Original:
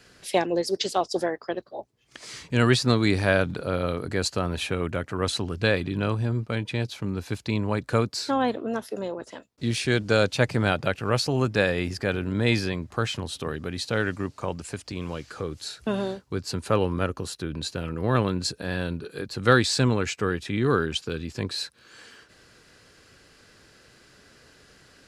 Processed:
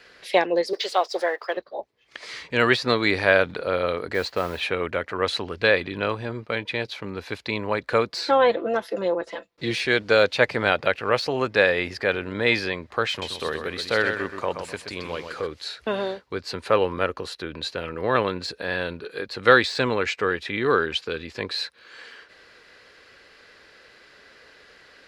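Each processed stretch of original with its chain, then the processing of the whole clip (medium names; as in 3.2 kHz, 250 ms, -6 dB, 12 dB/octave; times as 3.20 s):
0.73–1.57 s: companding laws mixed up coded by mu + high-pass 470 Hz
4.14–4.63 s: low-pass 2.8 kHz 6 dB/octave + modulation noise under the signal 18 dB
8.09–9.83 s: bass shelf 460 Hz +4 dB + comb 5.9 ms
13.09–15.47 s: treble shelf 8 kHz +9.5 dB + feedback delay 127 ms, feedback 28%, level -7.5 dB
whole clip: de-esser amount 60%; graphic EQ 125/500/1000/2000/4000/8000 Hz -5/+9/+6/+11/+8/-4 dB; trim -5.5 dB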